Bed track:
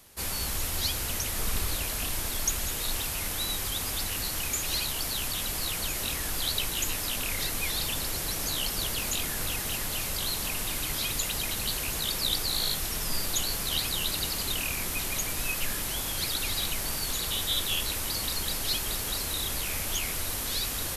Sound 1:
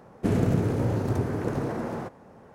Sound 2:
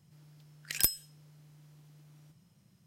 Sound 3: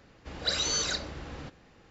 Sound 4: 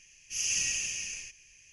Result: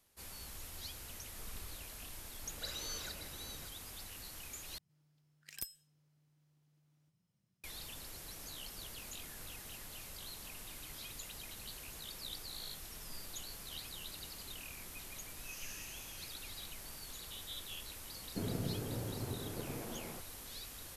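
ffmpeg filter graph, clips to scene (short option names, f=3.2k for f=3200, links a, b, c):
-filter_complex "[0:a]volume=-17.5dB[a];[3:a]aecho=1:1:575:0.282[b];[4:a]highshelf=f=6.4k:g=-11.5[c];[a]asplit=2[d][e];[d]atrim=end=4.784[f];[2:a]atrim=end=2.86,asetpts=PTS-STARTPTS,volume=-16dB[g];[e]atrim=start=7.636[h];[b]atrim=end=1.9,asetpts=PTS-STARTPTS,volume=-15dB,afade=t=in:d=0.004:c=hsin,afade=t=out:st=1.896:d=0.004:c=hsin,adelay=2160[i];[c]atrim=end=1.72,asetpts=PTS-STARTPTS,volume=-16.5dB,afade=t=in:d=0.004:c=hsin,afade=t=out:st=1.716:d=0.004:c=hsin,adelay=15130[j];[1:a]atrim=end=2.54,asetpts=PTS-STARTPTS,volume=-15.5dB,afade=t=in:d=0.004:c=hsin,afade=t=out:st=2.536:d=0.004:c=hsin,adelay=799092S[k];[f][g]acrossfade=d=0.004:c1=hsin:c2=hsin[l];[l][h]acrossfade=d=0.004:c1=hsin:c2=hsin[m];[m][i][j][k]amix=inputs=4:normalize=0"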